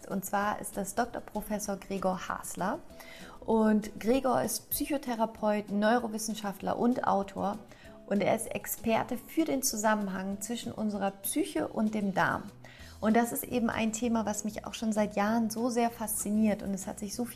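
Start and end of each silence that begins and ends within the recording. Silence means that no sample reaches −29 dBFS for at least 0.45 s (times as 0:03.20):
0:02.75–0:03.48
0:07.53–0:08.11
0:12.37–0:13.03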